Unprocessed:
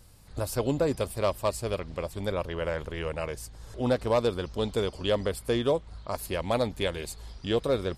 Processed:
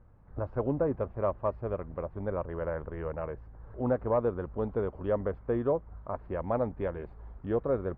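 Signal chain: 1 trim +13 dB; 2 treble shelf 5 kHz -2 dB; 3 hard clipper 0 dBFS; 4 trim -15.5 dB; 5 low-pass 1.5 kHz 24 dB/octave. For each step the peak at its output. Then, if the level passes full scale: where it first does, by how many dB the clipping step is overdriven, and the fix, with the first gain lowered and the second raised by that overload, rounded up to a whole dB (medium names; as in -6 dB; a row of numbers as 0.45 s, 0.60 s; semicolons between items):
-2.5 dBFS, -2.5 dBFS, -2.5 dBFS, -18.0 dBFS, -17.5 dBFS; nothing clips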